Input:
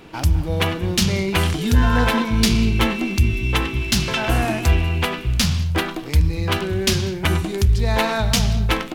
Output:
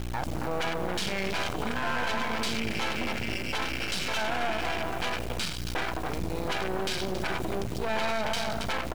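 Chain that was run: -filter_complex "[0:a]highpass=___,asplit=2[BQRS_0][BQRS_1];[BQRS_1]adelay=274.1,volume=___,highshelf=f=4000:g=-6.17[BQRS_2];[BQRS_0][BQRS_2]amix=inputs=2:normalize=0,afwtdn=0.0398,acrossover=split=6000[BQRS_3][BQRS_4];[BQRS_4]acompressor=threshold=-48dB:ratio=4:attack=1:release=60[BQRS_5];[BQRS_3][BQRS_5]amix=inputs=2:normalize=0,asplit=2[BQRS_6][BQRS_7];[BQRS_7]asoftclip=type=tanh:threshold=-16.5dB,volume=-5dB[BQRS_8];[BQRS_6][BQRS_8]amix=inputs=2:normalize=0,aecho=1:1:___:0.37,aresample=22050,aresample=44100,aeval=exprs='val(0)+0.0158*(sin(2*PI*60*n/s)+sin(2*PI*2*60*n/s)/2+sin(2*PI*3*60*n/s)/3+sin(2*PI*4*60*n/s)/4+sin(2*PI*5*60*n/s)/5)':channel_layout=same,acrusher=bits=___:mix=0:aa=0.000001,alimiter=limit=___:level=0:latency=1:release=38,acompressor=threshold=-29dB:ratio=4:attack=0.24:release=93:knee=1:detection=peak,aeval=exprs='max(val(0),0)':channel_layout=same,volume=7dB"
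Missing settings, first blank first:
420, -9dB, 1.3, 7, -12.5dB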